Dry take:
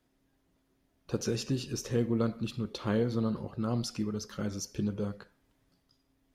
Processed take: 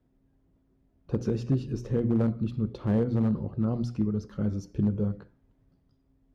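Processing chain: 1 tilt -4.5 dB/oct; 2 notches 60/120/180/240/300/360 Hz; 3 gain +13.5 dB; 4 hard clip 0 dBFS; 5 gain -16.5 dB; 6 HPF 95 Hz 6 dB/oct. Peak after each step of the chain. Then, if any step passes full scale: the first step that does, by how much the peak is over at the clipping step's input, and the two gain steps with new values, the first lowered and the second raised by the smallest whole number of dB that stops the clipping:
-8.5, -9.0, +4.5, 0.0, -16.5, -14.0 dBFS; step 3, 4.5 dB; step 3 +8.5 dB, step 5 -11.5 dB

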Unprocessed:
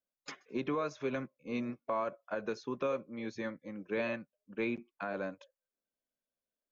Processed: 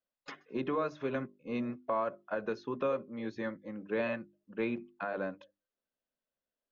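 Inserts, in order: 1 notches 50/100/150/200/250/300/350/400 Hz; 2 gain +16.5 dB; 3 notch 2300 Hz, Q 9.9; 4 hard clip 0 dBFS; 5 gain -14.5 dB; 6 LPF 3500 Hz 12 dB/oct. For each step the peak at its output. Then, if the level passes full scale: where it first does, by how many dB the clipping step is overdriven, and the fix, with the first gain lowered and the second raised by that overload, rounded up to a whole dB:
-22.5, -6.0, -6.0, -6.0, -20.5, -20.5 dBFS; no overload

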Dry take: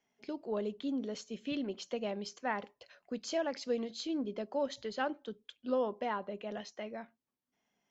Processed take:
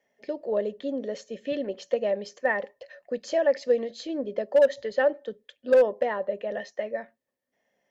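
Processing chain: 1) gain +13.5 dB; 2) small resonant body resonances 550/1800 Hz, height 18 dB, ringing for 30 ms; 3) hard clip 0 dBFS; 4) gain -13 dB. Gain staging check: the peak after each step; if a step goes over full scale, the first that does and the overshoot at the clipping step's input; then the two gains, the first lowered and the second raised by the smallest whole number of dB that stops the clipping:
-6.5, +6.0, 0.0, -13.0 dBFS; step 2, 6.0 dB; step 1 +7.5 dB, step 4 -7 dB

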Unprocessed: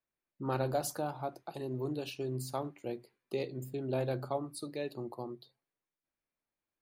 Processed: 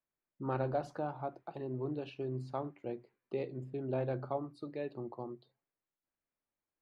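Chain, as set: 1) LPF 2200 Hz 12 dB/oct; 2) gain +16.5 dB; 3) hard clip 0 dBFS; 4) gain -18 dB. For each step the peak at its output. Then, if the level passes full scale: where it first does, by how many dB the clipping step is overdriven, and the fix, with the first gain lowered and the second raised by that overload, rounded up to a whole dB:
-21.0, -4.5, -4.5, -22.5 dBFS; no overload

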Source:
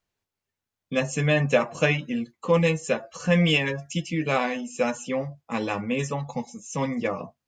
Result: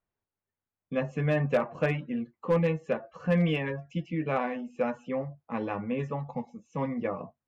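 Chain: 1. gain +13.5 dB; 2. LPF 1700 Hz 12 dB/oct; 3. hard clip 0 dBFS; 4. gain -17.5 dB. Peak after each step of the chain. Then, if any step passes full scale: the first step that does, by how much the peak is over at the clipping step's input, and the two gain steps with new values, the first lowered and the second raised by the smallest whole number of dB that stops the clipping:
+5.5, +4.5, 0.0, -17.5 dBFS; step 1, 4.5 dB; step 1 +8.5 dB, step 4 -12.5 dB

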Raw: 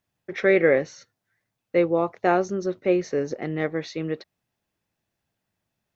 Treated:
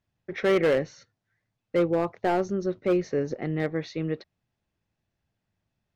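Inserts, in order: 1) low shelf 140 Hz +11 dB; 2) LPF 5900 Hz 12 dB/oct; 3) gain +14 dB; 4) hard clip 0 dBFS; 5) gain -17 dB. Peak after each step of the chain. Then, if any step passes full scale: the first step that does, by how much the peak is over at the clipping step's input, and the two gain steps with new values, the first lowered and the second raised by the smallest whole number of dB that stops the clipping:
-5.5, -5.5, +8.5, 0.0, -17.0 dBFS; step 3, 8.5 dB; step 3 +5 dB, step 5 -8 dB

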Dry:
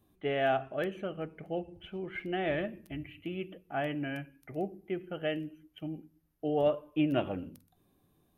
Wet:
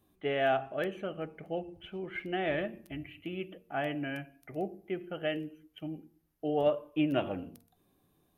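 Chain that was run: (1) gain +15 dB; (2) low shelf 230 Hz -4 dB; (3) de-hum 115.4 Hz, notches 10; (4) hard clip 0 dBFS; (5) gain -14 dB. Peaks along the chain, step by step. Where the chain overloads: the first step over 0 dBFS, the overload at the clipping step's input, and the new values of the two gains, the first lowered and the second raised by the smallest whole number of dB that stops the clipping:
-1.5, -3.0, -2.5, -2.5, -16.5 dBFS; no overload

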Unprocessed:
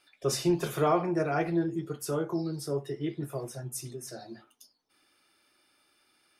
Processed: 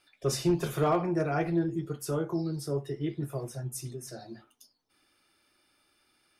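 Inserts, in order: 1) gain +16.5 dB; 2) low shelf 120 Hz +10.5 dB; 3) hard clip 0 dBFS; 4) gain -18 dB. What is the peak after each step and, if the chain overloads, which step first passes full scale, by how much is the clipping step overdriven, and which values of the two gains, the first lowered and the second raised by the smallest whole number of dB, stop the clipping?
+3.0, +4.0, 0.0, -18.0 dBFS; step 1, 4.0 dB; step 1 +12.5 dB, step 4 -14 dB

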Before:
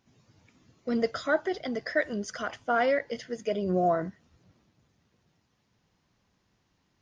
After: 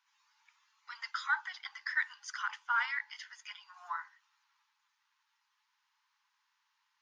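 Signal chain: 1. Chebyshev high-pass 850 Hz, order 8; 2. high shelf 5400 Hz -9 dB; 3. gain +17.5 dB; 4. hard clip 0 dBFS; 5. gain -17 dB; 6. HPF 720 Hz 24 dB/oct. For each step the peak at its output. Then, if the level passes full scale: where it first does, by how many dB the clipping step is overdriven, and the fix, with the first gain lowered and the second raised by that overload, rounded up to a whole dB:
-18.5, -19.0, -1.5, -1.5, -18.5, -19.0 dBFS; no overload

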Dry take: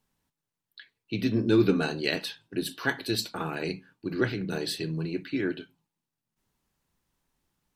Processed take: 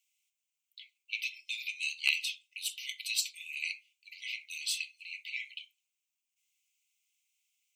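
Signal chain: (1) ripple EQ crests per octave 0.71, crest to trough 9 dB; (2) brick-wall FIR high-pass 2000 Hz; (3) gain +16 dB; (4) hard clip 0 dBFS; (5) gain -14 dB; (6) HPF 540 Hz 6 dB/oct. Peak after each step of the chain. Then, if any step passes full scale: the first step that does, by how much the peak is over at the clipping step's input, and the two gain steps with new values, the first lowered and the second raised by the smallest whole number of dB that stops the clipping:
-8.5, -11.5, +4.5, 0.0, -14.0, -13.0 dBFS; step 3, 4.5 dB; step 3 +11 dB, step 5 -9 dB

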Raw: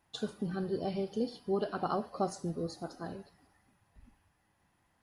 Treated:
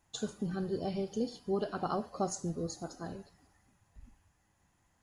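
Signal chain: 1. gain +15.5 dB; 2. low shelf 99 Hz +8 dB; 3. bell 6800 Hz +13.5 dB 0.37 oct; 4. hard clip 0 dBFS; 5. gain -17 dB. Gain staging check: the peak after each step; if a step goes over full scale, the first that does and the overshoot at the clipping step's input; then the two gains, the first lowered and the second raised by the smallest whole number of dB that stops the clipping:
-4.0, -3.0, -3.0, -3.0, -20.0 dBFS; no overload

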